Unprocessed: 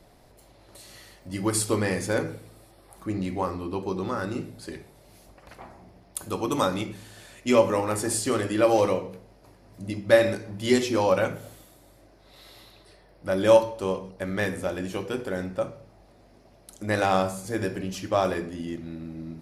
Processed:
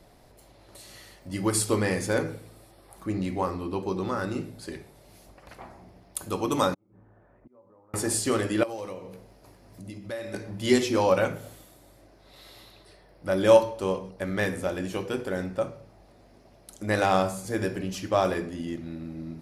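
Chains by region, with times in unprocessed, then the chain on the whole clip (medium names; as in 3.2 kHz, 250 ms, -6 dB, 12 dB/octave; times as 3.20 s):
6.74–7.94 s: inverted gate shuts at -24 dBFS, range -31 dB + compression 4:1, threshold -52 dBFS + inverse Chebyshev low-pass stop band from 7 kHz, stop band 80 dB
8.63–10.34 s: treble shelf 6 kHz +4.5 dB + compression 2.5:1, threshold -40 dBFS
whole clip: none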